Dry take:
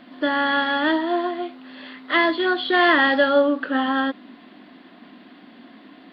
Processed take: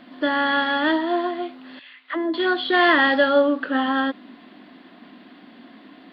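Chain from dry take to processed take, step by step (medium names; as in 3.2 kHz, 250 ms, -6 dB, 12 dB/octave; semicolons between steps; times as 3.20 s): 1.79–2.34 s: auto-wah 340–3200 Hz, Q 2.2, down, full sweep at -16.5 dBFS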